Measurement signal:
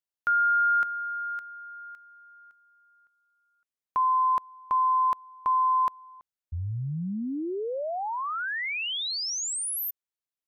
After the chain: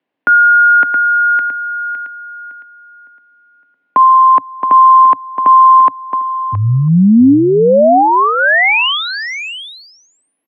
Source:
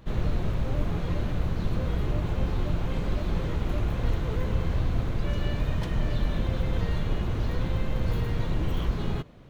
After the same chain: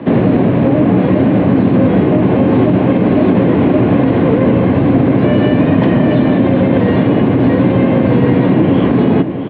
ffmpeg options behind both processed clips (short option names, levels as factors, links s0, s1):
-filter_complex "[0:a]lowshelf=f=190:g=-3,acrossover=split=1400[s0][s1];[s0]acontrast=85[s2];[s2][s1]amix=inputs=2:normalize=0,highpass=f=110:w=0.5412,highpass=f=110:w=1.3066,equalizer=f=130:t=q:w=4:g=-6,equalizer=f=260:t=q:w=4:g=10,equalizer=f=890:t=q:w=4:g=-3,equalizer=f=1300:t=q:w=4:g=-9,lowpass=f=2800:w=0.5412,lowpass=f=2800:w=1.3066,acompressor=threshold=0.0447:ratio=6:attack=89:release=678:knee=6:detection=rms,afreqshift=16,aecho=1:1:671:0.266,alimiter=level_in=12.6:limit=0.891:release=50:level=0:latency=1,volume=0.891"